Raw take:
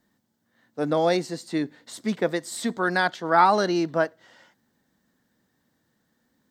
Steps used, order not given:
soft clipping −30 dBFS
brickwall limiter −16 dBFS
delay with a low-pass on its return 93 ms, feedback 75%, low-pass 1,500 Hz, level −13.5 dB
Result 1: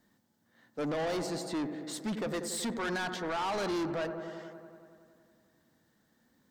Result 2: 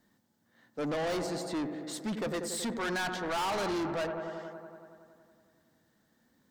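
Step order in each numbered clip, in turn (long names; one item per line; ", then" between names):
brickwall limiter, then delay with a low-pass on its return, then soft clipping
delay with a low-pass on its return, then soft clipping, then brickwall limiter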